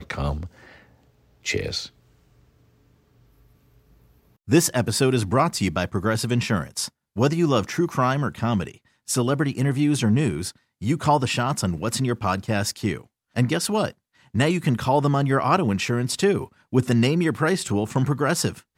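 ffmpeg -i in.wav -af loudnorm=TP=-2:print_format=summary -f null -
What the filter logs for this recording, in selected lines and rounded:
Input Integrated:    -23.0 LUFS
Input True Peak:      -5.4 dBTP
Input LRA:             5.2 LU
Input Threshold:     -33.8 LUFS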